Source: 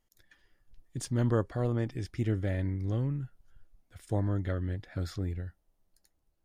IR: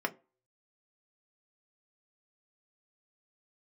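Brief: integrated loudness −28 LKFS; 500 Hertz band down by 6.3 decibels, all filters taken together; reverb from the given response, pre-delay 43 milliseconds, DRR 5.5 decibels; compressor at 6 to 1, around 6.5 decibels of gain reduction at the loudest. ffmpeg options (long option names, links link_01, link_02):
-filter_complex "[0:a]equalizer=frequency=500:width_type=o:gain=-8,acompressor=threshold=-31dB:ratio=6,asplit=2[link_01][link_02];[1:a]atrim=start_sample=2205,adelay=43[link_03];[link_02][link_03]afir=irnorm=-1:irlink=0,volume=-12dB[link_04];[link_01][link_04]amix=inputs=2:normalize=0,volume=9dB"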